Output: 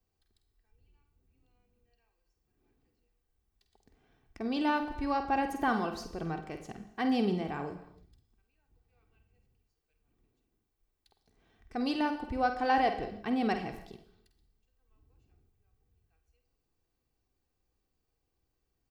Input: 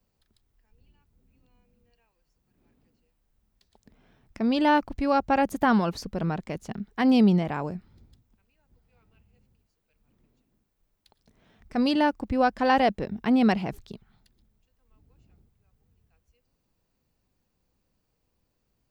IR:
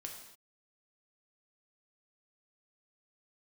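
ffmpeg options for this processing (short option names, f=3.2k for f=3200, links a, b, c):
-filter_complex "[0:a]aecho=1:1:2.6:0.47,asplit=2[a][b];[1:a]atrim=start_sample=2205,adelay=49[c];[b][c]afir=irnorm=-1:irlink=0,volume=-3.5dB[d];[a][d]amix=inputs=2:normalize=0,volume=-8dB"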